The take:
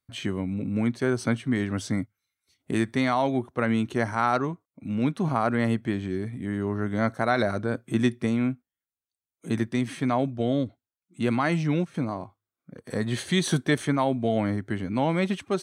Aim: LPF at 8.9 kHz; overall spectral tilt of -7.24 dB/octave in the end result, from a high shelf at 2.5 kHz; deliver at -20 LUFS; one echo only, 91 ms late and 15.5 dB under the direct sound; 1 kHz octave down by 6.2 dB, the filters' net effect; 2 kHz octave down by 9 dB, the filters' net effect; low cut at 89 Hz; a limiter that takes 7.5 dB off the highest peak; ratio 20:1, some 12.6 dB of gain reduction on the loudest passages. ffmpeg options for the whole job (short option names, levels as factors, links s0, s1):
-af "highpass=89,lowpass=8900,equalizer=f=1000:t=o:g=-6,equalizer=f=2000:t=o:g=-6,highshelf=f=2500:g=-7.5,acompressor=threshold=0.0282:ratio=20,alimiter=level_in=1.68:limit=0.0631:level=0:latency=1,volume=0.596,aecho=1:1:91:0.168,volume=8.91"